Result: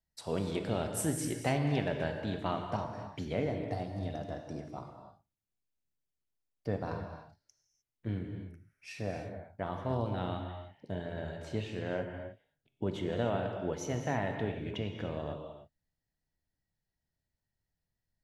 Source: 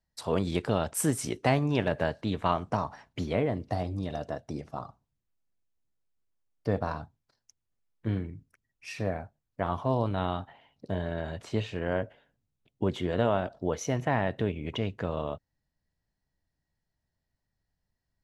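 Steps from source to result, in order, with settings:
pitch vibrato 2.9 Hz 20 cents
parametric band 1,100 Hz −5.5 dB 0.43 octaves
reverb whose tail is shaped and stops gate 330 ms flat, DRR 4 dB
level −6 dB

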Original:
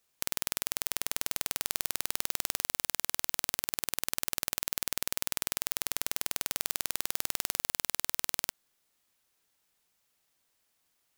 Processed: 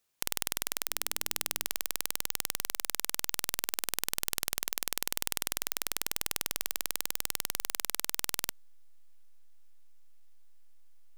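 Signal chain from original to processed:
0:00.83–0:01.67: hum removal 50.08 Hz, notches 7
in parallel at −8 dB: slack as between gear wheels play −31 dBFS
on the sum: level −2.5 dB

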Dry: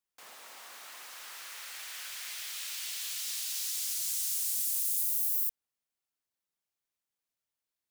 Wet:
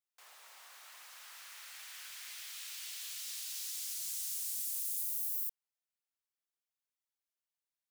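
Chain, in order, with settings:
high-pass filter 650 Hz 12 dB per octave
level −6.5 dB

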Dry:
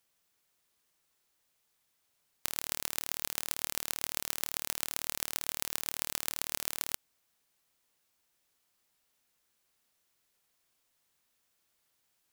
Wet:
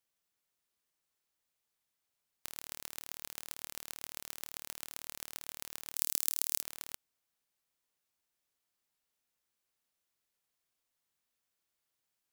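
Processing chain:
0:05.96–0:06.62: bass and treble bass −7 dB, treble +13 dB
level −9 dB

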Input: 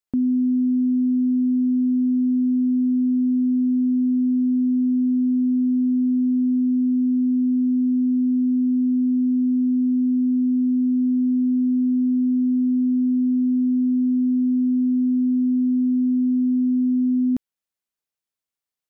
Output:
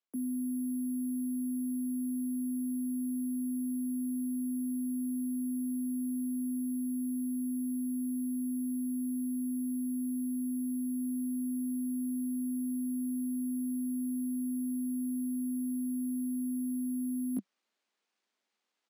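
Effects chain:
bad sample-rate conversion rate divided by 4×, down none, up zero stuff
Butterworth high-pass 190 Hz 96 dB per octave
high-frequency loss of the air 100 metres
double-tracking delay 19 ms −13 dB
reversed playback
downward compressor 10 to 1, threshold −38 dBFS, peak gain reduction 19.5 dB
reversed playback
level +4.5 dB

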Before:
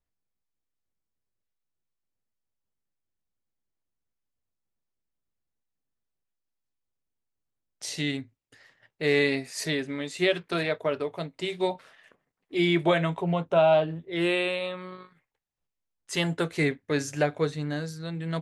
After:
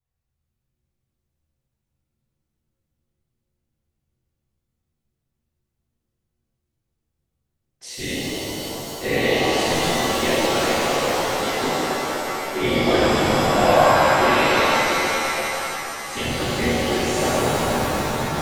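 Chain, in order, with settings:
random phases in short frames
buffer that repeats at 0:04.54/0:07.07/0:09.71/0:11.03/0:17.07, samples 512, times 10
reverb with rising layers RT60 3.5 s, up +7 semitones, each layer −2 dB, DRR −8.5 dB
level −4.5 dB

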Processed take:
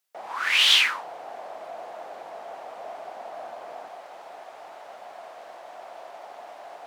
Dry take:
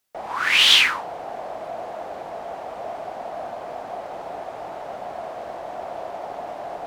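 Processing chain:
high-pass filter 630 Hz 6 dB per octave, from 0:03.88 1,300 Hz
level −3.5 dB

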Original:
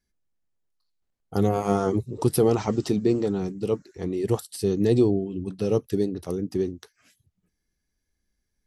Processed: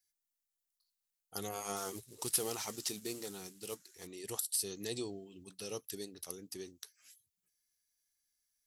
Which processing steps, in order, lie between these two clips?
0:01.76–0:04.07: variable-slope delta modulation 64 kbit/s
first-order pre-emphasis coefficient 0.97
level +3.5 dB

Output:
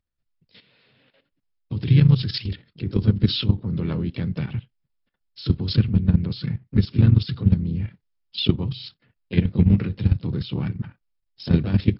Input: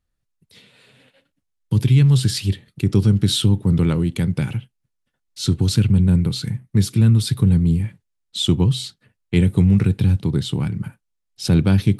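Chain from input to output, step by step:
pitch-shifted copies added −4 semitones −10 dB, +3 semitones −9 dB
output level in coarse steps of 12 dB
MP3 56 kbit/s 12,000 Hz

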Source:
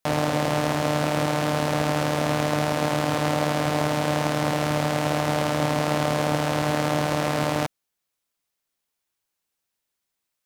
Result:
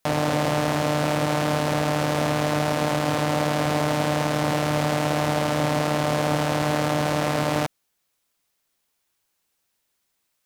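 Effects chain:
brickwall limiter −17 dBFS, peak gain reduction 9.5 dB
level +7 dB

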